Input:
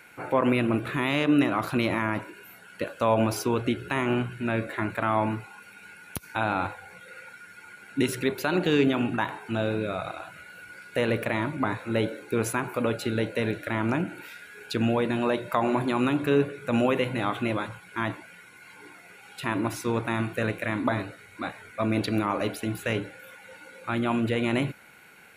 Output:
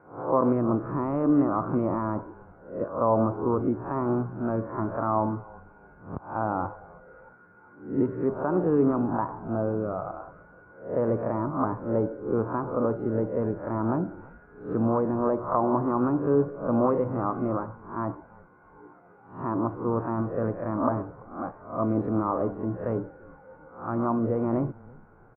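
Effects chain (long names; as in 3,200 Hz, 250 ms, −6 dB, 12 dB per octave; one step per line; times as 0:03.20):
peak hold with a rise ahead of every peak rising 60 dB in 0.44 s
Chebyshev low-pass filter 1,200 Hz, order 4
echo with shifted repeats 337 ms, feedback 35%, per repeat −130 Hz, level −23 dB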